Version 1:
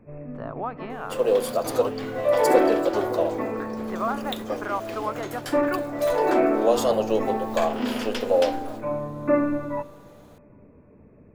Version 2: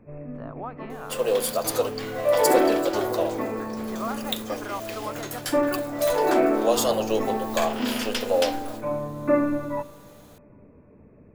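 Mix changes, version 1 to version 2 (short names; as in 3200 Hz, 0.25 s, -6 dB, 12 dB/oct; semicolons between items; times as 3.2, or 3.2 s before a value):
speech -5.0 dB; second sound: add tilt +2.5 dB/oct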